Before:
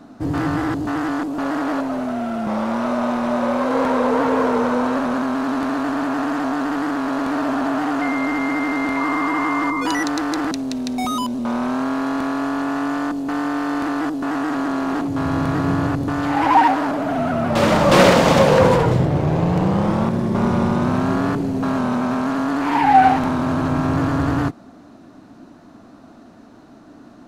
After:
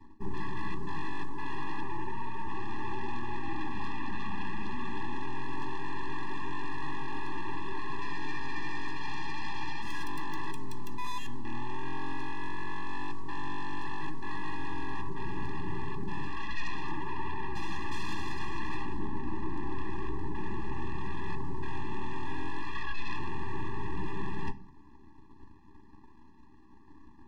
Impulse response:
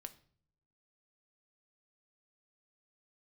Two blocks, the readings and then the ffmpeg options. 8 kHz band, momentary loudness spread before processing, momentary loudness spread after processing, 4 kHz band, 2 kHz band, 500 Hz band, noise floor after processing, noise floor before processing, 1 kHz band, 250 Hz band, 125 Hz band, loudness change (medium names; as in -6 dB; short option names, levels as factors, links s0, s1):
-20.0 dB, 9 LU, 2 LU, -15.5 dB, -14.5 dB, -24.5 dB, -52 dBFS, -45 dBFS, -18.5 dB, -22.0 dB, -18.0 dB, -19.5 dB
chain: -filter_complex "[0:a]highshelf=f=4900:g=-10.5,areverse,acompressor=threshold=0.0447:ratio=5,areverse,aeval=exprs='0.168*(cos(1*acos(clip(val(0)/0.168,-1,1)))-cos(1*PI/2))+0.075*(cos(3*acos(clip(val(0)/0.168,-1,1)))-cos(3*PI/2))+0.0531*(cos(8*acos(clip(val(0)/0.168,-1,1)))-cos(8*PI/2))':c=same[s0];[1:a]atrim=start_sample=2205,asetrate=61740,aresample=44100[s1];[s0][s1]afir=irnorm=-1:irlink=0,afftfilt=real='re*eq(mod(floor(b*sr/1024/400),2),0)':imag='im*eq(mod(floor(b*sr/1024/400),2),0)':win_size=1024:overlap=0.75,volume=1.12"